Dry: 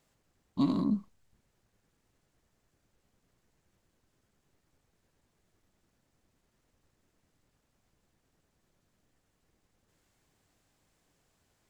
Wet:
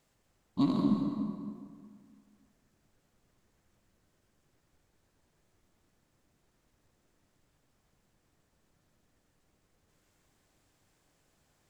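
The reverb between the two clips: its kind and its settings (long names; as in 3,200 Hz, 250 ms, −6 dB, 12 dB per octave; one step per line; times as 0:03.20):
dense smooth reverb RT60 2 s, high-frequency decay 0.65×, pre-delay 110 ms, DRR 2.5 dB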